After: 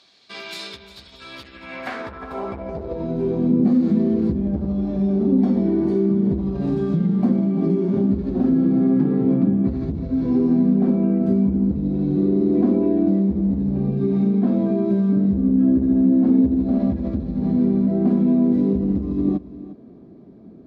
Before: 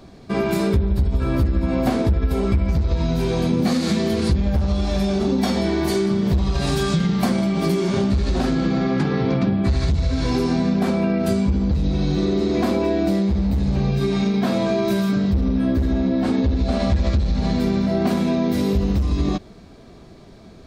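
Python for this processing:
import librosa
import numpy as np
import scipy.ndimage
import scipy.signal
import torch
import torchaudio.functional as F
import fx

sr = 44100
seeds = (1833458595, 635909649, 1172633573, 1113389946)

y = x + 10.0 ** (-15.5 / 20.0) * np.pad(x, (int(353 * sr / 1000.0), 0))[:len(x)]
y = fx.filter_sweep_bandpass(y, sr, from_hz=3800.0, to_hz=260.0, start_s=1.31, end_s=3.4, q=1.9)
y = F.gain(torch.from_numpy(y), 5.0).numpy()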